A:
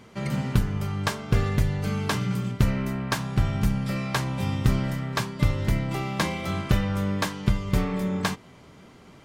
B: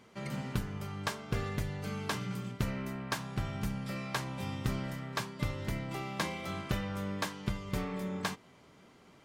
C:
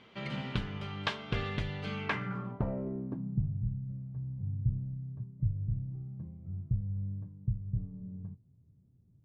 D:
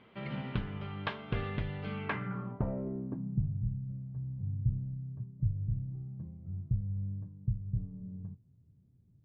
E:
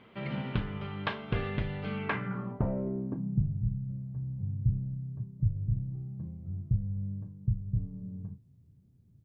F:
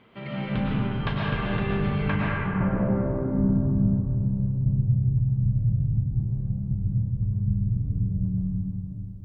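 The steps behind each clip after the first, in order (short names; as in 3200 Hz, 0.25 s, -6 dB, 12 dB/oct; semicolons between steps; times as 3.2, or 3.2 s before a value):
low shelf 150 Hz -8 dB; gain -7.5 dB
low-pass sweep 3300 Hz -> 110 Hz, 1.93–3.59
air absorption 340 m
doubler 36 ms -12.5 dB; gain +3 dB
digital reverb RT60 3.6 s, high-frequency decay 0.3×, pre-delay 75 ms, DRR -6 dB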